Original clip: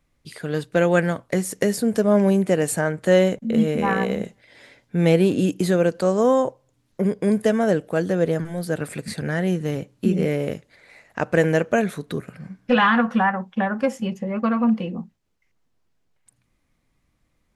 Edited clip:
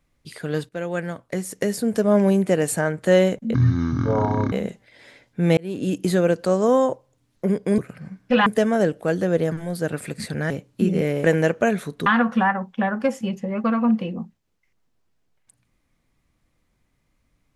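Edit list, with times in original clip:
0.69–2.15 fade in, from -12.5 dB
3.54–4.08 speed 55%
5.13–5.59 fade in
9.38–9.74 cut
10.48–11.35 cut
12.17–12.85 move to 7.34

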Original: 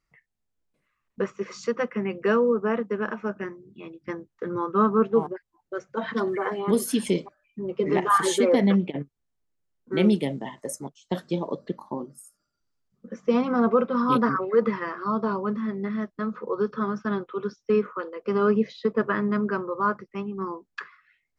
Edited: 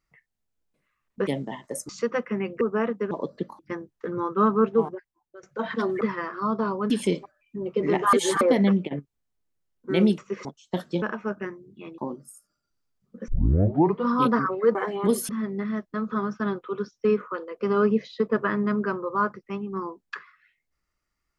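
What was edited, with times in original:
1.27–1.54 swap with 10.21–10.83
2.26–2.51 cut
3.01–3.97 swap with 11.4–11.88
5.15–5.81 fade out, to -18 dB
6.39–6.93 swap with 14.65–15.54
8.16–8.44 reverse
13.18 tape start 0.79 s
16.37–16.77 cut

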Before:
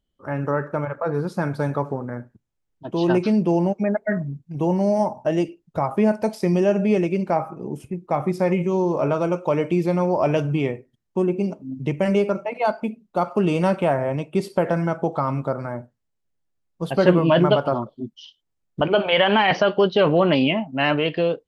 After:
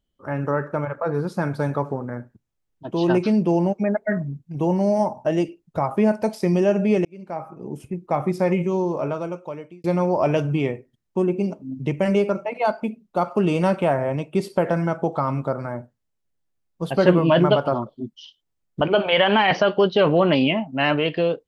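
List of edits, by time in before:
7.05–7.9 fade in
8.59–9.84 fade out

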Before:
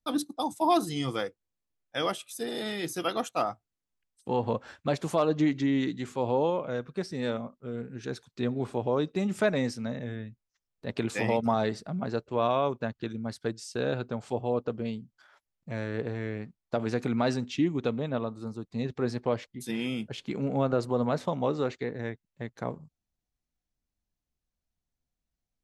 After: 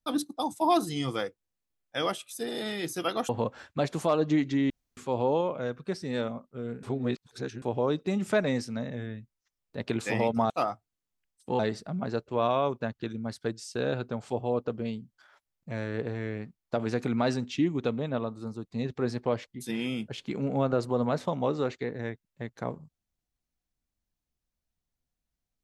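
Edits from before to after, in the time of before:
3.29–4.38 move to 11.59
5.79–6.06 room tone
7.92–8.71 reverse

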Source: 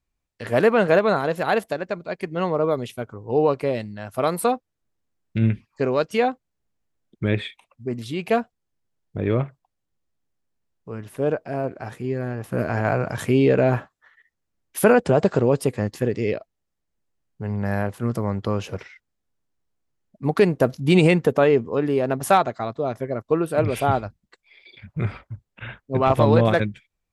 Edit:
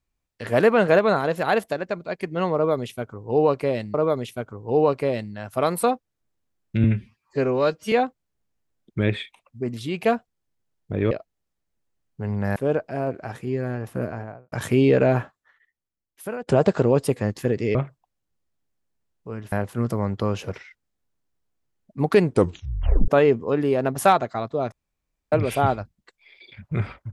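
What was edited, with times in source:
2.55–3.94 loop, 2 plays
5.45–6.17 stretch 1.5×
9.36–11.13 swap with 16.32–17.77
12.29–13.09 studio fade out
13.64–15.04 fade out quadratic, to -16.5 dB
20.48 tape stop 0.85 s
22.97–23.57 room tone

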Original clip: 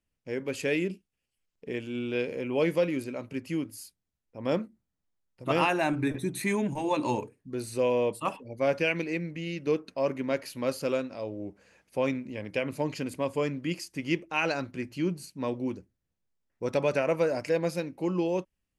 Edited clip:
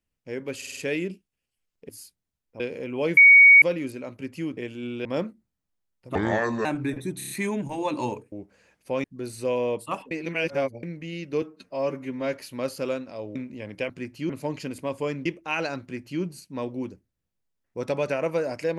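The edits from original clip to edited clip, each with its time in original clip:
0.57 stutter 0.05 s, 5 plays
1.69–2.17 swap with 3.69–4.4
2.74 add tone 2240 Hz -8.5 dBFS 0.45 s
5.5–5.83 speed 66%
6.36 stutter 0.03 s, 5 plays
8.45–9.17 reverse
9.76–10.37 stretch 1.5×
11.39–12.11 move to 7.38
13.61–14.11 cut
14.67–15.07 copy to 12.65

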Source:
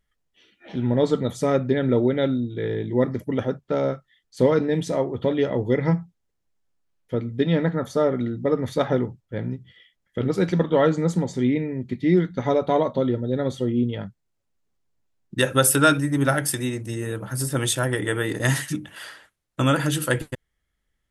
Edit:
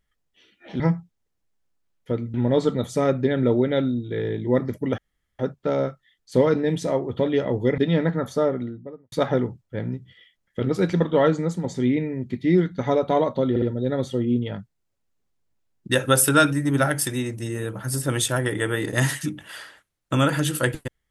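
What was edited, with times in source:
3.44 insert room tone 0.41 s
5.83–7.37 move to 0.8
7.87–8.71 studio fade out
10.89–11.23 fade out, to -7 dB
13.09 stutter 0.06 s, 3 plays

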